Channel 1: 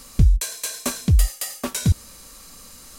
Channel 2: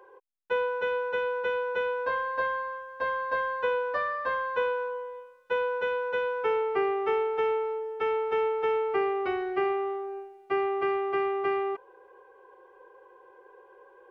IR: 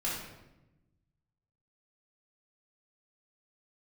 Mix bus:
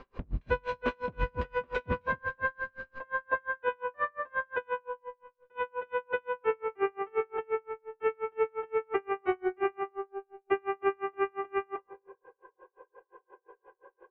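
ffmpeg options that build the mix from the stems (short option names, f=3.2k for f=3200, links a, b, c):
-filter_complex "[0:a]asoftclip=type=hard:threshold=-22dB,volume=-3.5dB,asplit=3[a][b][c];[b]volume=-13.5dB[d];[c]volume=-4dB[e];[1:a]volume=0.5dB,asplit=2[f][g];[g]volume=-9dB[h];[2:a]atrim=start_sample=2205[i];[d][h]amix=inputs=2:normalize=0[j];[j][i]afir=irnorm=-1:irlink=0[k];[e]aecho=0:1:265|530|795|1060|1325:1|0.33|0.109|0.0359|0.0119[l];[a][f][k][l]amix=inputs=4:normalize=0,lowpass=f=2.7k:w=0.5412,lowpass=f=2.7k:w=1.3066,aeval=exprs='val(0)*pow(10,-37*(0.5-0.5*cos(2*PI*5.7*n/s))/20)':c=same"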